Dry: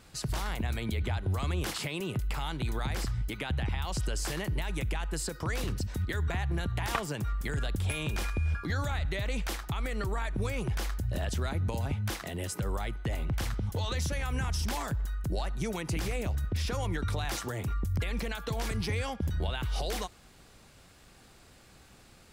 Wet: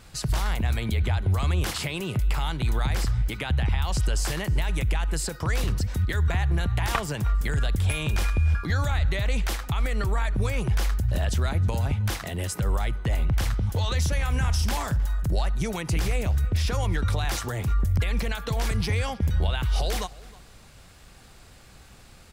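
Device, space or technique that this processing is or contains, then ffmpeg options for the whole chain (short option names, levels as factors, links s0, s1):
low shelf boost with a cut just above: -filter_complex "[0:a]asettb=1/sr,asplit=3[s0][s1][s2];[s0]atrim=end=14.184[s3];[s1]atrim=start=14.18:end=15.35,asetpts=PTS-STARTPTS,afade=t=in:d=0.004:c=qsin,afade=t=out:st=1.166:d=0.004:c=qsin,asplit=2[s4][s5];[s5]adelay=48,volume=0.2[s6];[s4][s6]amix=inputs=2:normalize=0,atrim=end_sample=51597[s7];[s2]atrim=start=15.346[s8];[s3][s7]acrossfade=d=0.004:c1=hsin:c2=qsin[s9];[s9][s8]acrossfade=d=0.004:c1=qsin:c2=hsin,lowshelf=f=80:g=6,equalizer=f=310:t=o:w=1.1:g=-3.5,asplit=2[s10][s11];[s11]adelay=314.9,volume=0.1,highshelf=f=4000:g=-7.08[s12];[s10][s12]amix=inputs=2:normalize=0,volume=1.78"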